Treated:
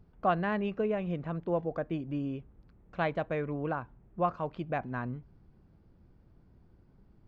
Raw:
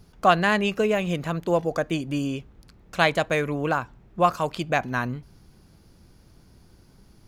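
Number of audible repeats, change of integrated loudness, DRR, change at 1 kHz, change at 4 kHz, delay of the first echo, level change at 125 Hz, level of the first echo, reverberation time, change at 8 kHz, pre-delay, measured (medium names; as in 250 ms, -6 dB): no echo, -9.0 dB, no reverb, -10.0 dB, -19.5 dB, no echo, -6.5 dB, no echo, no reverb, under -30 dB, no reverb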